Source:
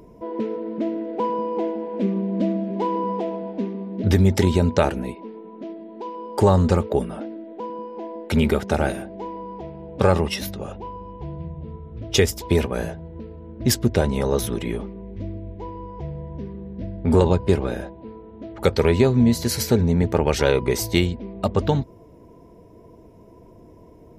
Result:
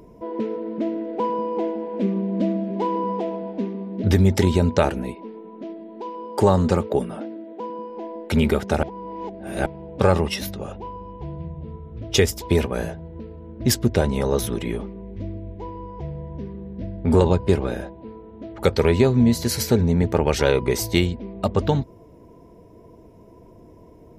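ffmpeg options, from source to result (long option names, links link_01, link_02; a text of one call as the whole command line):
ffmpeg -i in.wav -filter_complex "[0:a]asettb=1/sr,asplit=3[link_01][link_02][link_03];[link_01]atrim=end=6.244[link_04];[link_02]atrim=start=6.24:end=7.9,asetpts=PTS-STARTPTS,afade=type=in:duration=0.004:curve=qsin,afade=type=out:start_time=1.656:duration=0.004:curve=qsin,highpass=99[link_05];[link_03]atrim=start=7.896[link_06];[link_04][link_05]acrossfade=duration=0.004:curve1=hsin:curve2=qsin[link_07];[link_07][link_06]acrossfade=duration=0.004:curve1=qsin:curve2=hsin,asplit=3[link_08][link_09][link_10];[link_08]atrim=end=8.832[link_11];[link_09]atrim=start=8.828:end=9.662,asetpts=PTS-STARTPTS,areverse[link_12];[link_10]atrim=start=9.658[link_13];[link_11][link_12]acrossfade=duration=0.004:curve1=hsin:curve2=hsin[link_14];[link_14][link_13]acrossfade=duration=0.004:curve1=hsin:curve2=hsin" out.wav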